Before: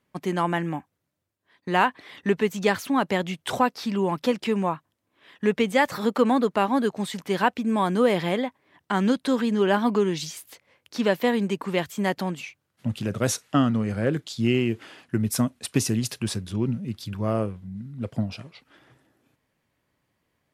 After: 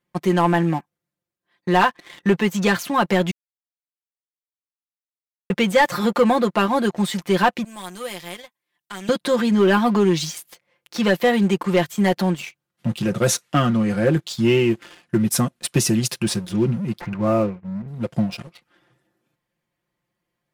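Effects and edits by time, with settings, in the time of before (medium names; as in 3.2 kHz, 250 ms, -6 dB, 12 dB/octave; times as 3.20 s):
3.31–5.50 s: mute
7.64–9.09 s: pre-emphasis filter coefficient 0.9
17.00–17.88 s: careless resampling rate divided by 8×, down none, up filtered
whole clip: comb 5.7 ms, depth 75%; waveshaping leveller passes 2; trim -3 dB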